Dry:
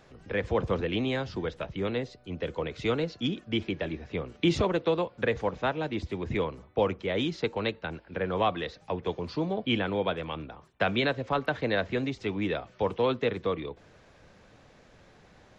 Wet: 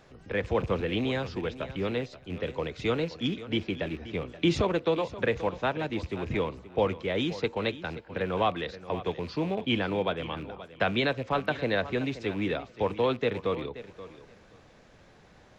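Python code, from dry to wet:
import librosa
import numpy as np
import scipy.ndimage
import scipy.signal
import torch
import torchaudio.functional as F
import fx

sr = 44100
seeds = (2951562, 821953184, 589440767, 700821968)

y = fx.rattle_buzz(x, sr, strikes_db=-37.0, level_db=-36.0)
y = fx.echo_feedback(y, sr, ms=528, feedback_pct=16, wet_db=-15)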